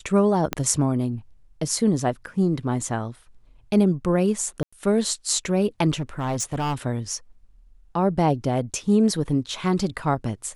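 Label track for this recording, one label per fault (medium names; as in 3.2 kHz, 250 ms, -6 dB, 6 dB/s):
0.530000	0.530000	pop -8 dBFS
4.630000	4.720000	dropout 95 ms
6.000000	6.750000	clipped -21.5 dBFS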